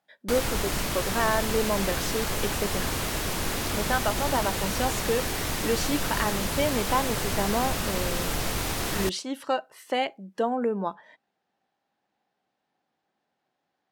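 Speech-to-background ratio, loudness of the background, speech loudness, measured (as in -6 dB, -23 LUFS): -1.5 dB, -28.5 LUFS, -30.0 LUFS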